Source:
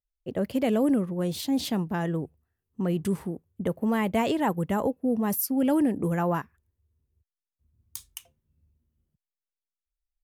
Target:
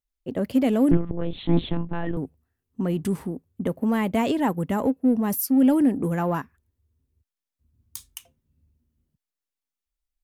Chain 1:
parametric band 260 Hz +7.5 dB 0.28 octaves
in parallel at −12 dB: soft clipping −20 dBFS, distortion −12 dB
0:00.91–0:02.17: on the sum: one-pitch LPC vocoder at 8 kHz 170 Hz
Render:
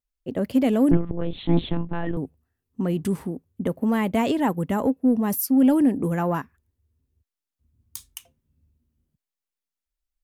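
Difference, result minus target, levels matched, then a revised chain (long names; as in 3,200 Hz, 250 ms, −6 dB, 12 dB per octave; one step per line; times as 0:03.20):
soft clipping: distortion −6 dB
parametric band 260 Hz +7.5 dB 0.28 octaves
in parallel at −12 dB: soft clipping −29 dBFS, distortion −5 dB
0:00.91–0:02.17: on the sum: one-pitch LPC vocoder at 8 kHz 170 Hz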